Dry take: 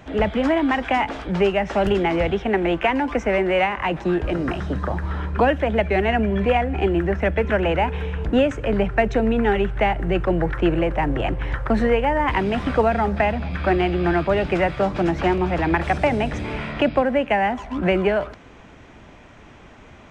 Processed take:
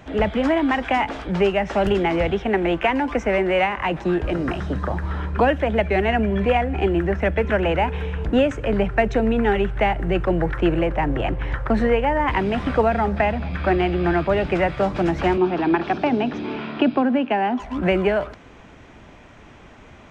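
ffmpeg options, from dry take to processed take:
-filter_complex "[0:a]asettb=1/sr,asplit=3[a][b][c];[a]atrim=end=10.864[d];[b]atrim=start=10.86:end=14.78,asetpts=PTS-STARTPTS,afade=t=in:d=0.004:c=qsin,afade=t=out:st=3.916:d=0.004:c=qsin,highshelf=f=5.8k:g=-4.5[e];[c]atrim=start=14.776[f];[d][e]acrossfade=d=0.004:c1=hsin:c2=qsin[g];[g][f]acrossfade=d=0.004:c1=qsin:c2=hsin,asettb=1/sr,asplit=3[h][i][j];[h]atrim=end=15.374[k];[i]atrim=start=15.37:end=17.6,asetpts=PTS-STARTPTS,afade=t=in:d=0.004:c=qsin,afade=t=out:st=2.226:d=0.004:c=qsin,highpass=200,equalizer=f=250:t=q:w=4:g=8,equalizer=f=370:t=q:w=4:g=6,equalizer=f=540:t=q:w=4:g=-7,equalizer=f=2k:t=q:w=4:g=-9,lowpass=f=4.9k:w=0.5412,lowpass=f=4.9k:w=1.3066[l];[j]atrim=start=17.596[m];[k][l]acrossfade=d=0.004:c1=hsin:c2=qsin[n];[n][m]acrossfade=d=0.004:c1=qsin:c2=hsin"

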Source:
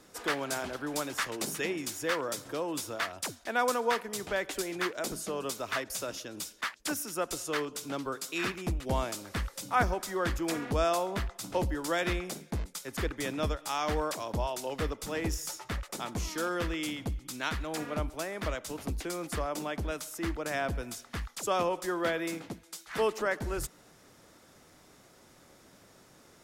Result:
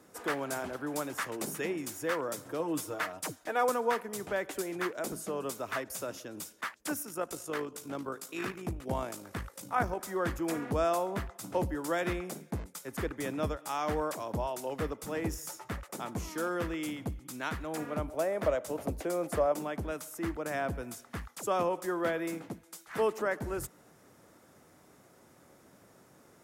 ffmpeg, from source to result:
-filter_complex "[0:a]asettb=1/sr,asplit=3[a][b][c];[a]atrim=end=2.594[d];[b]atrim=start=2.59:end=3.69,asetpts=PTS-STARTPTS,afade=t=in:d=0.004:c=qsin,afade=t=out:st=1.096:d=0.004:c=qsin,aecho=1:1:6.5:0.65,atrim=end_sample=48510[e];[c]atrim=start=3.686[f];[d][e]acrossfade=d=0.004:c1=hsin:c2=qsin[g];[g][f]acrossfade=d=0.004:c1=qsin:c2=hsin,asplit=3[h][i][j];[h]afade=t=out:st=7.02:d=0.02[k];[i]tremolo=f=53:d=0.462,afade=t=in:st=7.02:d=0.02,afade=t=out:st=10:d=0.02[l];[j]afade=t=in:st=10:d=0.02[m];[k][l][m]amix=inputs=3:normalize=0,asettb=1/sr,asplit=3[n][o][p];[n]atrim=end=18.084[q];[o]atrim=start=18.08:end=19.52,asetpts=PTS-STARTPTS,afade=t=in:d=0.004:c=qsin,afade=t=out:st=1.436:d=0.004:c=qsin,equalizer=f=580:t=o:w=0.73:g=10.5[r];[p]atrim=start=19.516[s];[q][r]acrossfade=d=0.004:c1=hsin:c2=qsin[t];[t][s]acrossfade=d=0.004:c1=qsin:c2=hsin,highpass=77,equalizer=f=4.1k:t=o:w=1.8:g=-8.5"

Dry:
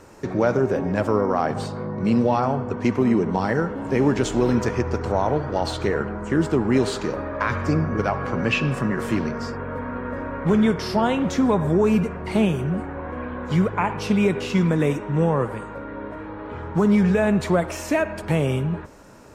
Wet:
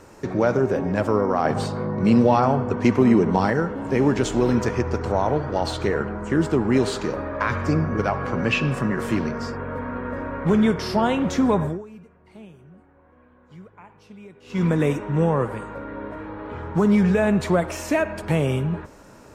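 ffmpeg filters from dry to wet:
-filter_complex "[0:a]asplit=5[a][b][c][d][e];[a]atrim=end=1.452[f];[b]atrim=start=1.448:end=3.502,asetpts=PTS-STARTPTS,volume=3dB[g];[c]atrim=start=3.498:end=11.87,asetpts=PTS-STARTPTS,afade=t=out:st=8.132:d=0.24:c=qua:silence=0.0630957[h];[d]atrim=start=11.87:end=14.4,asetpts=PTS-STARTPTS,volume=-24dB[i];[e]atrim=start=14.4,asetpts=PTS-STARTPTS,afade=t=in:d=0.24:c=qua:silence=0.0630957[j];[f][g]acrossfade=d=0.004:c1=hsin:c2=hsin[k];[h][i][j]concat=n=3:v=0:a=1[l];[k][l]acrossfade=d=0.004:c1=hsin:c2=hsin"

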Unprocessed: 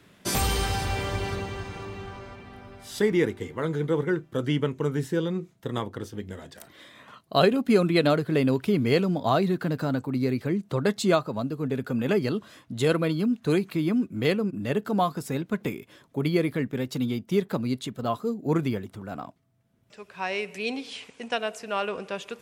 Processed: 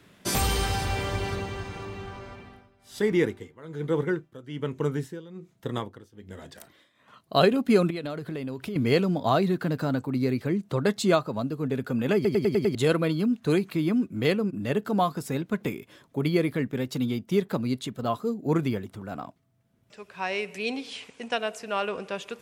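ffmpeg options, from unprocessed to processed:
-filter_complex "[0:a]asettb=1/sr,asplit=3[a][b][c];[a]atrim=end=2.344[d];[b]atrim=start=2.34:end=7.38,asetpts=PTS-STARTPTS,afade=t=in:d=0.004:c=qsin,afade=t=out:st=5.036:d=0.004:c=qsin,tremolo=f=1.2:d=0.87[e];[c]atrim=start=7.376[f];[d][e]acrossfade=d=0.004:c1=hsin:c2=qsin[g];[g][f]acrossfade=d=0.004:c1=qsin:c2=hsin,asettb=1/sr,asplit=3[h][i][j];[h]atrim=end=7.904[k];[i]atrim=start=7.9:end=8.76,asetpts=PTS-STARTPTS,afade=t=in:d=0.004:c=qsin,afade=t=out:st=0.856:d=0.004:c=qsin,acompressor=threshold=-30dB:ratio=6:attack=3.2:release=140:knee=1:detection=peak[l];[j]atrim=start=8.756[m];[k][l]acrossfade=d=0.004:c1=hsin:c2=qsin[n];[n][m]acrossfade=d=0.004:c1=qsin:c2=hsin,asplit=7[o][p][q][r][s][t][u];[o]atrim=end=12.252[v];[p]atrim=start=12.148:end=12.252[w];[q]atrim=start=12.148:end=12.252[x];[r]atrim=start=12.148:end=12.252[y];[s]atrim=start=12.148:end=12.252[z];[t]atrim=start=12.148:end=12.252[aa];[u]atrim=start=12.748[ab];[v][w]acrossfade=d=0.004:c1=hsin:c2=hsin[ac];[ac][x]acrossfade=d=0.004:c1=hsin:c2=hsin[ad];[ad][y]acrossfade=d=0.004:c1=hsin:c2=hsin[ae];[ae][z]acrossfade=d=0.004:c1=hsin:c2=hsin[af];[af][aa]acrossfade=d=0.004:c1=hsin:c2=hsin[ag];[ag][ab]acrossfade=d=0.004:c1=hsin:c2=hsin"

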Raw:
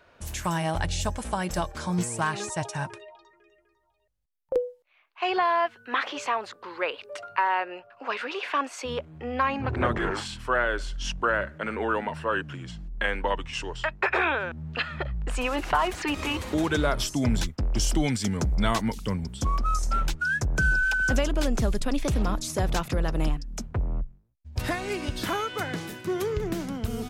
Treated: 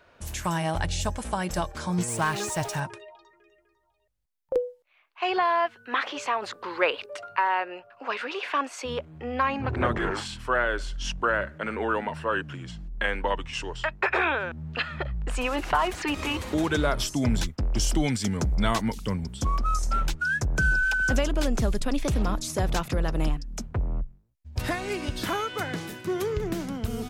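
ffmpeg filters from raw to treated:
-filter_complex "[0:a]asettb=1/sr,asplit=3[a][b][c];[a]atrim=end=2.084[d];[b]atrim=start=2.08:end=2.8,asetpts=PTS-STARTPTS,afade=t=in:d=0.004:c=qsin,afade=t=out:st=0.716:d=0.004:c=qsin,aeval=exprs='val(0)+0.5*0.0188*sgn(val(0))':c=same[e];[c]atrim=start=2.796[f];[d][e]acrossfade=d=0.004:c1=hsin:c2=qsin[g];[g][f]acrossfade=d=0.004:c1=qsin:c2=hsin,asettb=1/sr,asplit=3[h][i][j];[h]atrim=end=6.424[k];[i]atrim=start=6.42:end=7.06,asetpts=PTS-STARTPTS,afade=t=in:d=0.004:c=qsin,afade=t=out:st=0.636:d=0.004:c=qsin,acontrast=31[l];[j]atrim=start=7.056[m];[k][l]acrossfade=d=0.004:c1=hsin:c2=qsin[n];[n][m]acrossfade=d=0.004:c1=qsin:c2=hsin"

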